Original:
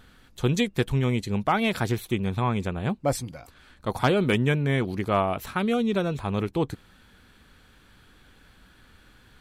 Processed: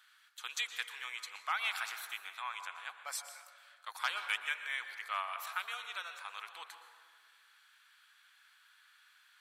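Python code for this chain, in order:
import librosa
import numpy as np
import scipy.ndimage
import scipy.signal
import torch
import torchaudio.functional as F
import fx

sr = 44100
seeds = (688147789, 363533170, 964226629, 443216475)

y = scipy.signal.sosfilt(scipy.signal.butter(4, 1200.0, 'highpass', fs=sr, output='sos'), x)
y = fx.rev_plate(y, sr, seeds[0], rt60_s=1.7, hf_ratio=0.35, predelay_ms=105, drr_db=7.5)
y = y * librosa.db_to_amplitude(-5.5)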